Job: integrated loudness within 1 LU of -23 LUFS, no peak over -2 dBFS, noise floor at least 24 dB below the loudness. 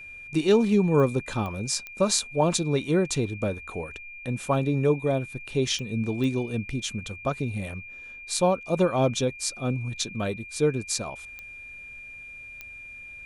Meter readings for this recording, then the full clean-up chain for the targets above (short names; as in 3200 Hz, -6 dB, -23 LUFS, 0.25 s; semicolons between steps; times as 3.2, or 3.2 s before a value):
clicks 7; steady tone 2400 Hz; tone level -40 dBFS; loudness -26.5 LUFS; peak -7.0 dBFS; loudness target -23.0 LUFS
-> de-click; notch 2400 Hz, Q 30; gain +3.5 dB